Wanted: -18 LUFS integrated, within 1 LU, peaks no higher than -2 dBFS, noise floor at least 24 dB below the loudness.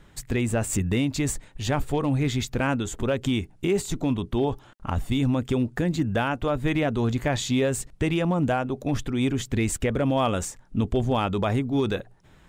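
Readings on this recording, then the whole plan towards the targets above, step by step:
clipped 0.3%; flat tops at -15.0 dBFS; loudness -26.0 LUFS; peak -15.0 dBFS; loudness target -18.0 LUFS
-> clip repair -15 dBFS; gain +8 dB

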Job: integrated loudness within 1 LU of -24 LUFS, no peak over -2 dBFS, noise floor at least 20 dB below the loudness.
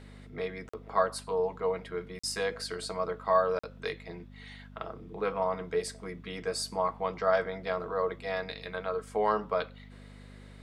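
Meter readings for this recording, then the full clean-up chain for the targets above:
dropouts 3; longest dropout 45 ms; hum 50 Hz; harmonics up to 250 Hz; hum level -48 dBFS; loudness -32.5 LUFS; peak -12.0 dBFS; loudness target -24.0 LUFS
-> interpolate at 0.69/2.19/3.59, 45 ms; de-hum 50 Hz, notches 5; gain +8.5 dB

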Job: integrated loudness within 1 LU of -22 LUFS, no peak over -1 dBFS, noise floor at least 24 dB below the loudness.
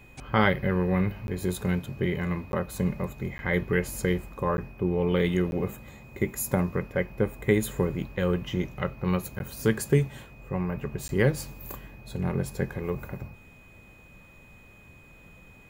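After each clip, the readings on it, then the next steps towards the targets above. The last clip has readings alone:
dropouts 7; longest dropout 11 ms; steady tone 2500 Hz; tone level -54 dBFS; loudness -28.5 LUFS; peak -6.0 dBFS; loudness target -22.0 LUFS
-> interpolate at 1.27/2.52/3.38/4.57/5.51/9.39/11.08, 11 ms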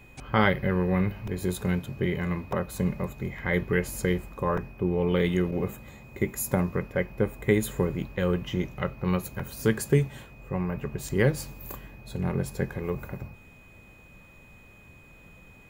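dropouts 0; steady tone 2500 Hz; tone level -54 dBFS
-> notch 2500 Hz, Q 30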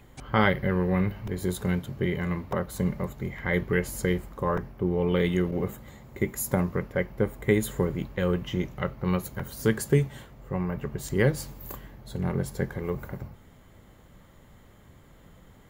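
steady tone none; loudness -28.5 LUFS; peak -6.5 dBFS; loudness target -22.0 LUFS
-> gain +6.5 dB; limiter -1 dBFS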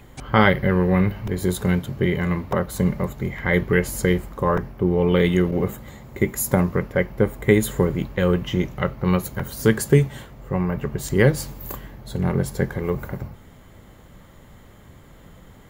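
loudness -22.0 LUFS; peak -1.0 dBFS; noise floor -47 dBFS

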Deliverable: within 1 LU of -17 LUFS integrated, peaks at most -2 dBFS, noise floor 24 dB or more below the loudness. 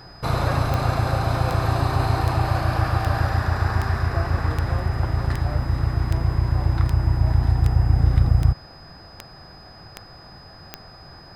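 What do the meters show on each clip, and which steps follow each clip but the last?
clicks 14; steady tone 5000 Hz; tone level -47 dBFS; loudness -22.0 LUFS; peak -5.5 dBFS; loudness target -17.0 LUFS
-> de-click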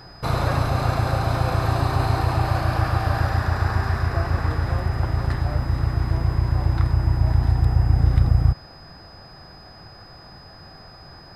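clicks 0; steady tone 5000 Hz; tone level -47 dBFS
-> notch 5000 Hz, Q 30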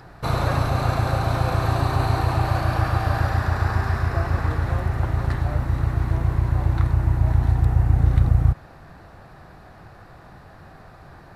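steady tone none; loudness -22.0 LUFS; peak -5.5 dBFS; loudness target -17.0 LUFS
-> gain +5 dB; limiter -2 dBFS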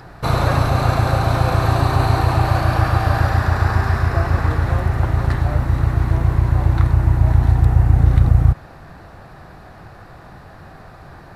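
loudness -17.0 LUFS; peak -2.0 dBFS; noise floor -41 dBFS

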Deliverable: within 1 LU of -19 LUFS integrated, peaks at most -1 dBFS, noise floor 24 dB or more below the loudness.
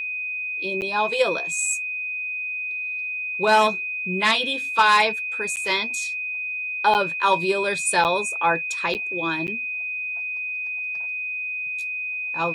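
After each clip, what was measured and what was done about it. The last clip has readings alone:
dropouts 6; longest dropout 9.1 ms; steady tone 2500 Hz; tone level -26 dBFS; loudness -22.5 LUFS; peak -7.0 dBFS; loudness target -19.0 LUFS
-> interpolate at 0.81/5.56/6.94/8.04/8.94/9.47, 9.1 ms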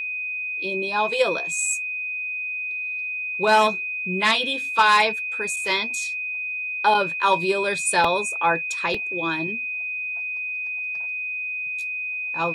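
dropouts 0; steady tone 2500 Hz; tone level -26 dBFS
-> notch 2500 Hz, Q 30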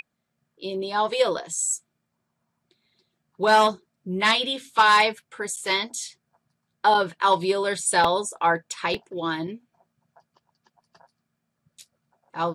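steady tone none; loudness -23.0 LUFS; peak -6.5 dBFS; loudness target -19.0 LUFS
-> gain +4 dB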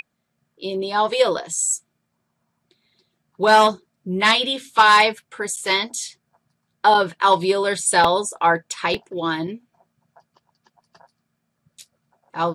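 loudness -19.0 LUFS; peak -2.5 dBFS; noise floor -75 dBFS

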